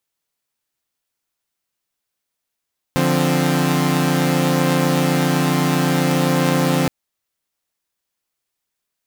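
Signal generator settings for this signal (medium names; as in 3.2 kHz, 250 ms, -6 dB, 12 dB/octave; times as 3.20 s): chord D3/F3/C4 saw, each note -17 dBFS 3.92 s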